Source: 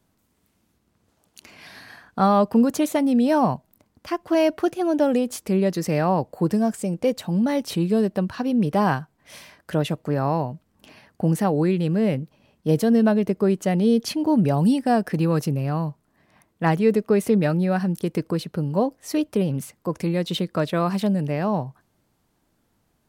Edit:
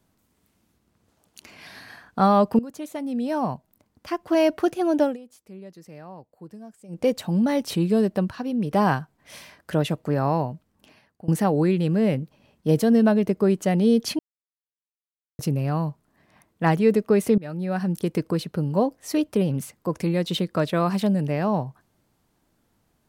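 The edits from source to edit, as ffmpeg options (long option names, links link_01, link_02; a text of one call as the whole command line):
ffmpeg -i in.wav -filter_complex "[0:a]asplit=10[link_01][link_02][link_03][link_04][link_05][link_06][link_07][link_08][link_09][link_10];[link_01]atrim=end=2.59,asetpts=PTS-STARTPTS,afade=type=out:start_time=2.586:duration=0.004:curve=hsin:silence=0.125893[link_11];[link_02]atrim=start=2.59:end=5.17,asetpts=PTS-STARTPTS,afade=type=in:duration=1.9:silence=0.125893,afade=type=out:start_time=2.43:duration=0.15:silence=0.0891251[link_12];[link_03]atrim=start=5.17:end=6.88,asetpts=PTS-STARTPTS,volume=-21dB[link_13];[link_04]atrim=start=6.88:end=8.312,asetpts=PTS-STARTPTS,afade=type=in:duration=0.15:silence=0.0891251[link_14];[link_05]atrim=start=8.308:end=8.712,asetpts=PTS-STARTPTS,volume=-4.5dB[link_15];[link_06]atrim=start=8.708:end=11.28,asetpts=PTS-STARTPTS,afade=type=out:start_time=1.732:duration=0.84:silence=0.0891251[link_16];[link_07]atrim=start=11.28:end=14.19,asetpts=PTS-STARTPTS,afade=type=in:duration=0.004:curve=hsin:silence=0.0891251,afade=type=out:start_time=2.906:duration=0.004:curve=hsin[link_17];[link_08]atrim=start=14.19:end=15.39,asetpts=PTS-STARTPTS,volume=0[link_18];[link_09]atrim=start=15.39:end=17.38,asetpts=PTS-STARTPTS,afade=type=in:duration=0.004:curve=hsin,afade=type=out:start_time=1.986:duration=0.004:curve=hsin:silence=0.0749894[link_19];[link_10]atrim=start=17.38,asetpts=PTS-STARTPTS,afade=type=in:duration=0.59:silence=0.0749894[link_20];[link_11][link_12][link_13][link_14]concat=n=4:v=0:a=1[link_21];[link_21][link_15]acrossfade=duration=0.004:curve1=hsin:curve2=hsin[link_22];[link_16][link_17][link_18][link_19][link_20]concat=n=5:v=0:a=1[link_23];[link_22][link_23]acrossfade=duration=0.004:curve1=hsin:curve2=hsin" out.wav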